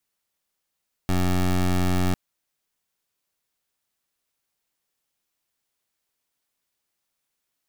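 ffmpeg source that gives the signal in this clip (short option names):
-f lavfi -i "aevalsrc='0.0891*(2*lt(mod(90.9*t,1),0.18)-1)':d=1.05:s=44100"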